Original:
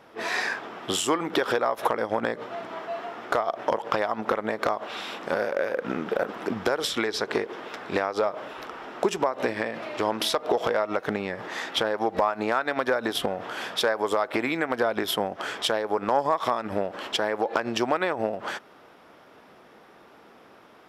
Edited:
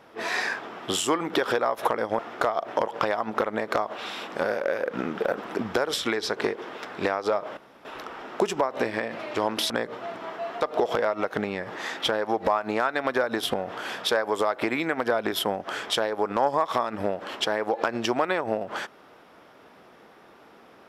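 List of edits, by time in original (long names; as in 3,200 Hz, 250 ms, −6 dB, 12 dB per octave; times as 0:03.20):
0:02.19–0:03.10: move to 0:10.33
0:08.48: splice in room tone 0.28 s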